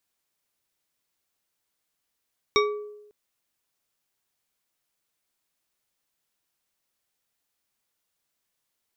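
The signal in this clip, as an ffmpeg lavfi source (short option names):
-f lavfi -i "aevalsrc='0.126*pow(10,-3*t/0.95)*sin(2*PI*418*t)+0.106*pow(10,-3*t/0.467)*sin(2*PI*1152.4*t)+0.0891*pow(10,-3*t/0.292)*sin(2*PI*2258.9*t)+0.075*pow(10,-3*t/0.205)*sin(2*PI*3734*t)+0.0631*pow(10,-3*t/0.155)*sin(2*PI*5576.1*t)':d=0.55:s=44100"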